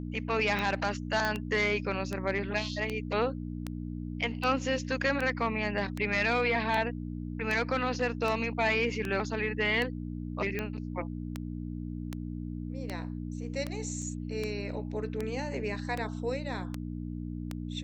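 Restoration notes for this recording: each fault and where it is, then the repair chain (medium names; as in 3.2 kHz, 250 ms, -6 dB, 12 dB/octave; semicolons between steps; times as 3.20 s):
hum 60 Hz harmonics 5 -37 dBFS
tick 78 rpm -19 dBFS
1.25 s: pop -16 dBFS
14.02 s: dropout 2.3 ms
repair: de-click; de-hum 60 Hz, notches 5; interpolate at 14.02 s, 2.3 ms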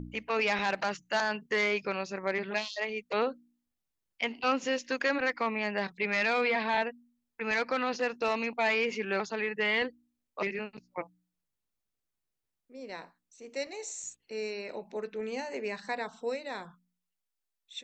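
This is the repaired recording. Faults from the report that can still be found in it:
nothing left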